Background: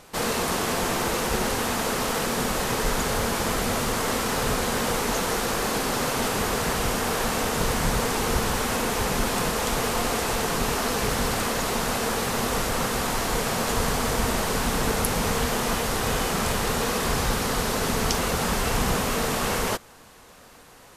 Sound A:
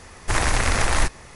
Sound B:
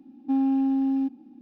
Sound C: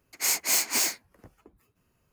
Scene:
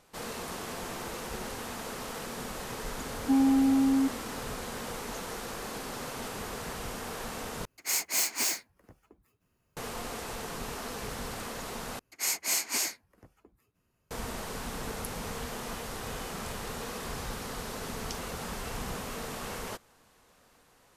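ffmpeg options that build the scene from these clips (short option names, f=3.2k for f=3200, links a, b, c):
-filter_complex "[3:a]asplit=2[a][b];[0:a]volume=-13dB[c];[b]aresample=32000,aresample=44100[d];[c]asplit=3[e][f][g];[e]atrim=end=7.654[h];[a]atrim=end=2.12,asetpts=PTS-STARTPTS,volume=-4dB[i];[f]atrim=start=9.766:end=11.994[j];[d]atrim=end=2.12,asetpts=PTS-STARTPTS,volume=-4.5dB[k];[g]atrim=start=14.106[l];[2:a]atrim=end=1.41,asetpts=PTS-STARTPTS,volume=-0.5dB,afade=t=in:d=0.004:c=hsin,afade=t=out:st=1.406:d=0.004:c=hsin,adelay=3000[m];[h][i]acrossfade=d=0.004:c1=hsin:c2=hsin[n];[n][j]acrossfade=d=0.004:c1=hsin:c2=hsin[o];[o][k]acrossfade=d=0.004:c1=hsin:c2=hsin[p];[p][l]acrossfade=d=0.004:c1=hsin:c2=hsin[q];[q][m]amix=inputs=2:normalize=0"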